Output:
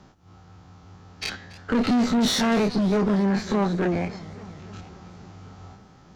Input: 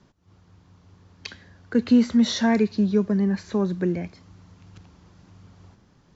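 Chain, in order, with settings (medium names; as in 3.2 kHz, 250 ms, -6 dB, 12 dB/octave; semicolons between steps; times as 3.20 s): every event in the spectrogram widened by 60 ms; small resonant body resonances 780/1300 Hz, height 11 dB; valve stage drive 20 dB, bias 0.45; in parallel at -5 dB: one-sided clip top -38.5 dBFS; on the sum: modulated delay 277 ms, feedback 68%, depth 170 cents, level -19 dB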